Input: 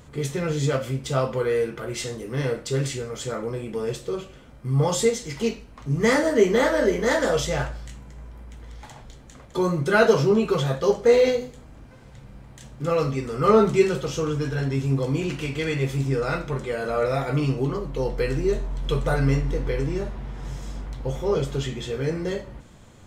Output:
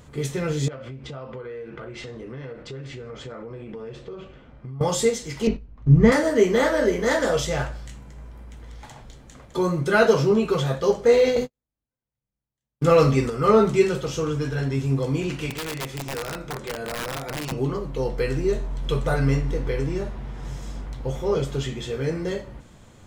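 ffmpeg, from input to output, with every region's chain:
-filter_complex "[0:a]asettb=1/sr,asplit=3[s0][s1][s2];[s0]atrim=end=0.684[s3];[s1]atrim=start=0.68:end=4.81,asetpts=PTS-STARTPTS,afade=t=in:d=0.004:c=qsin,afade=t=out:st=4.126:d=0.004:c=qsin,lowpass=3000,acompressor=threshold=0.0251:ratio=12:attack=3.2:release=140:knee=1:detection=peak[s4];[s2]atrim=start=4.806[s5];[s3][s4]acrossfade=d=0.004:c1=hsin:c2=qsin[s6];[s6][s5]acrossfade=d=0.004:c1=qsin:c2=hsin,asettb=1/sr,asplit=3[s7][s8][s9];[s7]atrim=end=5.474[s10];[s8]atrim=start=5.47:end=6.12,asetpts=PTS-STARTPTS,afade=t=in:d=0.004:c=qsin,afade=t=out:st=0.646:d=0.004:c=qsin,lowpass=7400,agate=range=0.224:threshold=0.0112:ratio=16:release=100:detection=peak,aemphasis=mode=reproduction:type=riaa[s11];[s9]atrim=start=6.116[s12];[s10][s11]acrossfade=d=0.004:c1=hsin:c2=qsin[s13];[s13][s12]acrossfade=d=0.004:c1=qsin:c2=hsin,asettb=1/sr,asplit=3[s14][s15][s16];[s14]atrim=end=11.364[s17];[s15]atrim=start=11.36:end=13.3,asetpts=PTS-STARTPTS,afade=t=in:d=0.004:c=qsin,afade=t=out:st=1.936:d=0.004:c=qsin,agate=range=0.00251:threshold=0.02:ratio=16:release=100:detection=peak,acontrast=82[s18];[s16]atrim=start=13.296[s19];[s17][s18]acrossfade=d=0.004:c1=hsin:c2=qsin[s20];[s20][s19]acrossfade=d=0.004:c1=qsin:c2=hsin,asettb=1/sr,asplit=3[s21][s22][s23];[s21]atrim=end=15.504[s24];[s22]atrim=start=15.5:end=17.52,asetpts=PTS-STARTPTS,afade=t=in:d=0.004:c=qsin,afade=t=out:st=2.016:d=0.004:c=qsin,acrossover=split=250|530|7600[s25][s26][s27][s28];[s25]acompressor=threshold=0.0141:ratio=3[s29];[s26]acompressor=threshold=0.0178:ratio=3[s30];[s27]acompressor=threshold=0.0158:ratio=3[s31];[s28]acompressor=threshold=0.00112:ratio=3[s32];[s29][s30][s31][s32]amix=inputs=4:normalize=0,aeval=exprs='(mod(15.8*val(0)+1,2)-1)/15.8':c=same[s33];[s23]atrim=start=17.516[s34];[s24][s33]acrossfade=d=0.004:c1=hsin:c2=qsin[s35];[s35][s34]acrossfade=d=0.004:c1=qsin:c2=hsin"

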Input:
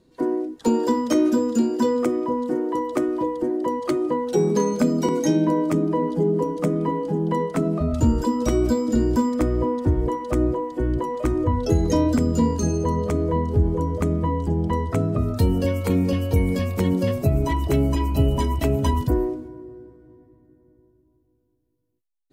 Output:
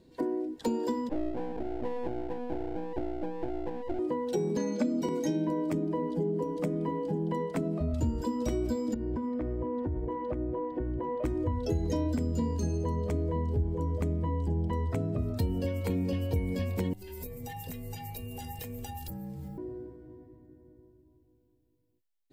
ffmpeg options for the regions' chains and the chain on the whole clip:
-filter_complex "[0:a]asettb=1/sr,asplit=3[s0][s1][s2];[s0]atrim=end=1.094[s3];[s1]atrim=start=1.09:end=3.99,asetpts=PTS-STARTPTS,afade=t=in:d=0.004:c=qsin,afade=t=out:st=2.896:d=0.004:c=qsin,asuperpass=centerf=380:order=20:qfactor=1.2,aeval=exprs='max(val(0),0)':c=same[s4];[s2]atrim=start=3.986[s5];[s3][s4]acrossfade=d=0.004:c1=hsin:c2=qsin[s6];[s6][s5]acrossfade=d=0.004:c1=qsin:c2=hsin,asettb=1/sr,asplit=3[s7][s8][s9];[s7]atrim=end=4.574[s10];[s8]atrim=start=4.57:end=5.02,asetpts=PTS-STARTPTS,afade=t=in:d=0.004:c=qsin,afade=t=out:st=0.446:d=0.004:c=qsin,highpass=150,lowpass=6400,aecho=1:1:3.5:0.85,atrim=end_sample=19845[s11];[s9]atrim=start=5.016[s12];[s10][s11]acrossfade=d=0.004:c1=hsin:c2=qsin[s13];[s13][s12]acrossfade=d=0.004:c1=qsin:c2=hsin,asettb=1/sr,asplit=3[s14][s15][s16];[s14]atrim=end=8.944[s17];[s15]atrim=start=8.94:end=11.24,asetpts=PTS-STARTPTS,afade=t=in:d=0.004:c=qsin,afade=t=out:st=2.296:d=0.004:c=qsin,lowpass=2000,acompressor=threshold=0.0708:ratio=10:attack=3.2:release=140:knee=1:detection=peak[s18];[s16]atrim=start=11.236[s19];[s17][s18]acrossfade=d=0.004:c1=hsin:c2=qsin[s20];[s20][s19]acrossfade=d=0.004:c1=qsin:c2=hsin,asettb=1/sr,asplit=3[s21][s22][s23];[s21]atrim=end=16.934[s24];[s22]atrim=start=16.93:end=19.58,asetpts=PTS-STARTPTS,afade=t=in:d=0.004:c=qsin,afade=t=out:st=2.646:d=0.004:c=qsin,aemphasis=mode=production:type=bsi,acompressor=threshold=0.0158:ratio=12:attack=3.2:release=140:knee=1:detection=peak,afreqshift=-170[s25];[s23]atrim=start=19.576[s26];[s24][s25]acrossfade=d=0.004:c1=hsin:c2=qsin[s27];[s27][s26]acrossfade=d=0.004:c1=qsin:c2=hsin,equalizer=f=80:w=8:g=5.5,acompressor=threshold=0.0251:ratio=2.5,equalizer=f=1250:t=o:w=0.33:g=-9,equalizer=f=6300:t=o:w=0.33:g=-4,equalizer=f=10000:t=o:w=0.33:g=-5"

